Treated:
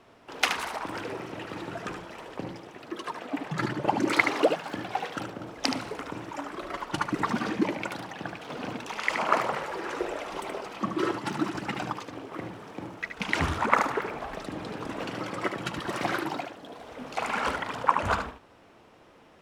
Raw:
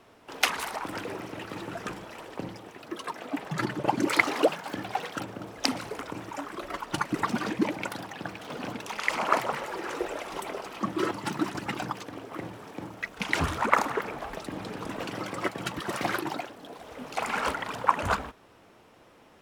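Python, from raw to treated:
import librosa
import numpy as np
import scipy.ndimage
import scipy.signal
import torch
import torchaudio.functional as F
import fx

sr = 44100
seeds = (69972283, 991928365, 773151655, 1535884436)

y = fx.high_shelf(x, sr, hz=10000.0, db=-11.0)
y = y + 10.0 ** (-7.5 / 20.0) * np.pad(y, (int(74 * sr / 1000.0), 0))[:len(y)]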